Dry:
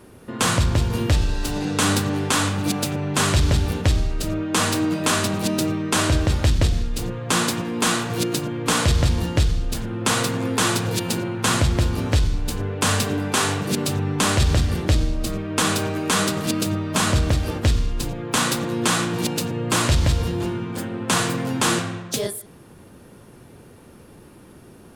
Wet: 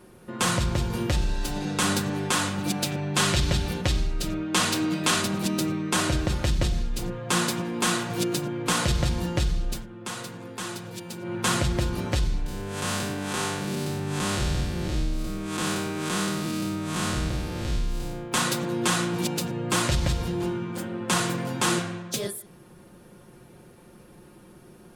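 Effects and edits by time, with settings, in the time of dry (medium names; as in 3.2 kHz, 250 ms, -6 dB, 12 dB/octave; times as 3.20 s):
2.77–5.22 s: dynamic bell 3.6 kHz, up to +4 dB, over -38 dBFS, Q 0.76
9.71–11.35 s: dip -10 dB, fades 0.15 s
12.46–18.32 s: spectral blur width 187 ms
whole clip: comb 5.6 ms, depth 48%; trim -5 dB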